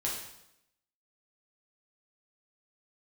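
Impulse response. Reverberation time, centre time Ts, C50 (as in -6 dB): 0.80 s, 45 ms, 3.5 dB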